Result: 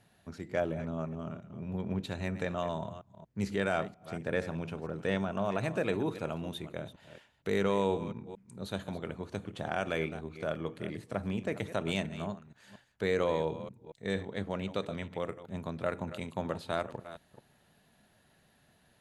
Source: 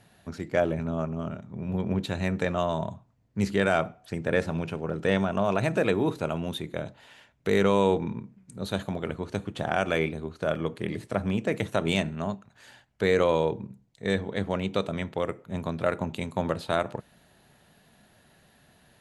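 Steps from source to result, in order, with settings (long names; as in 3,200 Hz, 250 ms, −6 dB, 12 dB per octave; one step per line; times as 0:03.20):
delay that plays each chunk backwards 232 ms, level −13.5 dB
level −7 dB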